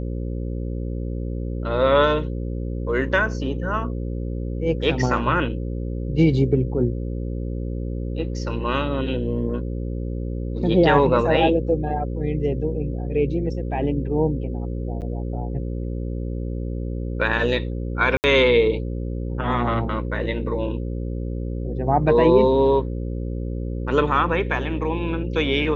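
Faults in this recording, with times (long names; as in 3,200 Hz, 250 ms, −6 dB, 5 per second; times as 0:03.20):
mains buzz 60 Hz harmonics 9 −27 dBFS
0:15.01–0:15.02: drop-out 8.3 ms
0:18.17–0:18.24: drop-out 69 ms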